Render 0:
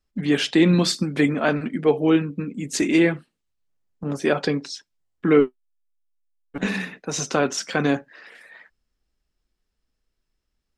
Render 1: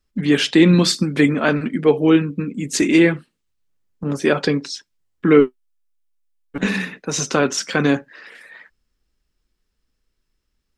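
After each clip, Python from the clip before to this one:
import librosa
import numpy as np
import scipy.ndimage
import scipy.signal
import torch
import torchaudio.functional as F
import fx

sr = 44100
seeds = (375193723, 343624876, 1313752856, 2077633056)

y = fx.peak_eq(x, sr, hz=710.0, db=-5.0, octaves=0.52)
y = F.gain(torch.from_numpy(y), 4.5).numpy()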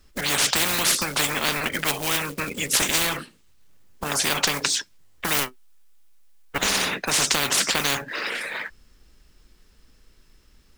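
y = fx.quant_float(x, sr, bits=4)
y = fx.spectral_comp(y, sr, ratio=10.0)
y = F.gain(torch.from_numpy(y), -1.5).numpy()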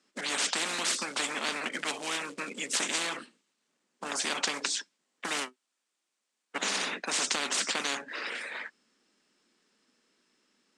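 y = scipy.signal.sosfilt(scipy.signal.ellip(3, 1.0, 40, [220.0, 8500.0], 'bandpass', fs=sr, output='sos'), x)
y = F.gain(torch.from_numpy(y), -7.5).numpy()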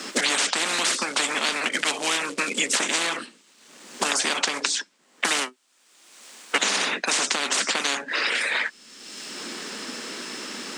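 y = fx.peak_eq(x, sr, hz=61.0, db=-13.0, octaves=1.7)
y = fx.band_squash(y, sr, depth_pct=100)
y = F.gain(torch.from_numpy(y), 7.5).numpy()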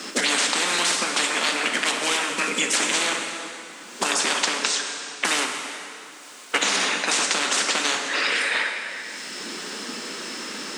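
y = fx.rev_plate(x, sr, seeds[0], rt60_s=2.9, hf_ratio=0.8, predelay_ms=0, drr_db=2.5)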